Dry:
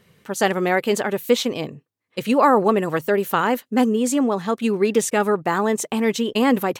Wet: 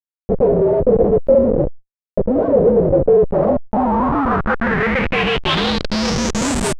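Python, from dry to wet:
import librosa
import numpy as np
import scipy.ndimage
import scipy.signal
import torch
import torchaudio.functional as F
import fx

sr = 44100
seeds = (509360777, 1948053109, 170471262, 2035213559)

y = fx.partial_stretch(x, sr, pct=118)
y = scipy.signal.sosfilt(scipy.signal.butter(4, 140.0, 'highpass', fs=sr, output='sos'), y)
y = fx.high_shelf(y, sr, hz=3000.0, db=-11.5)
y = fx.hum_notches(y, sr, base_hz=60, count=10)
y = fx.leveller(y, sr, passes=2)
y = fx.schmitt(y, sr, flips_db=-21.5)
y = fx.filter_sweep_lowpass(y, sr, from_hz=510.0, to_hz=8700.0, start_s=3.23, end_s=6.67, q=4.8)
y = fx.sustainer(y, sr, db_per_s=140.0)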